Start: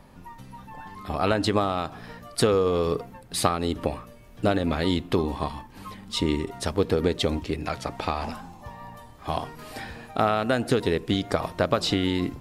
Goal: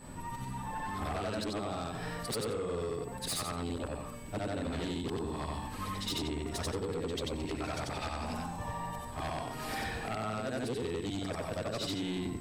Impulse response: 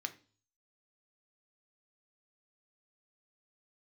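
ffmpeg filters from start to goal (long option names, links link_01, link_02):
-af "afftfilt=real='re':imag='-im':win_size=8192:overlap=0.75,bandreject=frequency=190.9:width_type=h:width=4,bandreject=frequency=381.8:width_type=h:width=4,bandreject=frequency=572.7:width_type=h:width=4,bandreject=frequency=763.6:width_type=h:width=4,bandreject=frequency=954.5:width_type=h:width=4,bandreject=frequency=1145.4:width_type=h:width=4,bandreject=frequency=1336.3:width_type=h:width=4,bandreject=frequency=1527.2:width_type=h:width=4,adynamicequalizer=threshold=0.00891:dfrequency=1100:dqfactor=1.2:tfrequency=1100:tqfactor=1.2:attack=5:release=100:ratio=0.375:range=2.5:mode=cutabove:tftype=bell,acompressor=threshold=-37dB:ratio=12,aeval=exprs='val(0)+0.000631*sin(2*PI*8000*n/s)':channel_layout=same,aeval=exprs='0.0422*sin(PI/2*2.24*val(0)/0.0422)':channel_layout=same,volume=-3dB"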